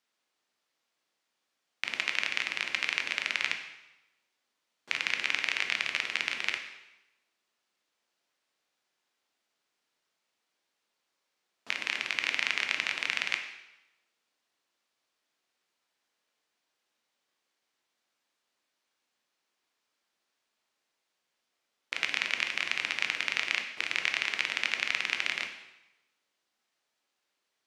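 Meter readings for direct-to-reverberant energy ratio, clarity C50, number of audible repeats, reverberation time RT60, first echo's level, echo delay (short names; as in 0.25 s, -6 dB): 5.0 dB, 8.0 dB, none, 0.95 s, none, none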